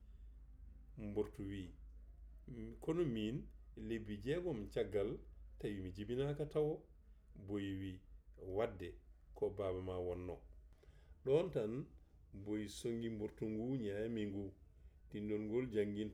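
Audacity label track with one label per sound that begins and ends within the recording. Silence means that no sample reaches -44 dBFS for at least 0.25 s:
0.990000	1.650000	sound
2.480000	3.410000	sound
3.780000	5.160000	sound
5.610000	6.760000	sound
7.490000	7.940000	sound
8.430000	8.900000	sound
9.380000	10.340000	sound
11.260000	11.820000	sound
12.400000	14.480000	sound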